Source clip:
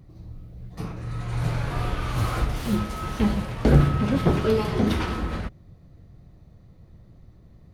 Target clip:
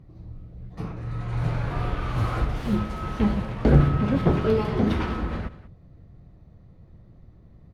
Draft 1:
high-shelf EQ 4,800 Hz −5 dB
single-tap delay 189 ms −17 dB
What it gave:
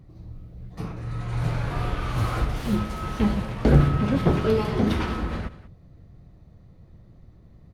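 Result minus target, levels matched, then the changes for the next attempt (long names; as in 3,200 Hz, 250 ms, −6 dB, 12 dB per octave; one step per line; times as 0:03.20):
8,000 Hz band +6.5 dB
change: high-shelf EQ 4,800 Hz −14.5 dB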